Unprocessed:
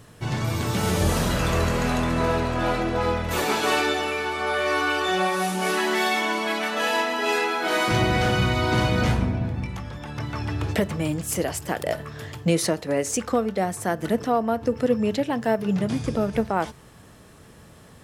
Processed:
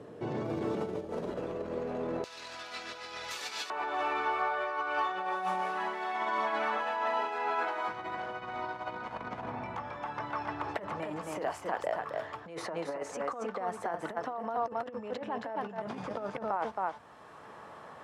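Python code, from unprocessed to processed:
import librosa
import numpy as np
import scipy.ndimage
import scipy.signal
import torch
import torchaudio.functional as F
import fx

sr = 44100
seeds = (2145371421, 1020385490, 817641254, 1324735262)

y = x + 10.0 ** (-7.0 / 20.0) * np.pad(x, (int(269 * sr / 1000.0), 0))[:len(x)]
y = fx.over_compress(y, sr, threshold_db=-25.0, ratio=-0.5)
y = fx.bandpass_q(y, sr, hz=fx.steps((0.0, 430.0), (2.24, 5000.0), (3.7, 950.0)), q=1.7)
y = fx.band_squash(y, sr, depth_pct=40)
y = y * 10.0 ** (-1.5 / 20.0)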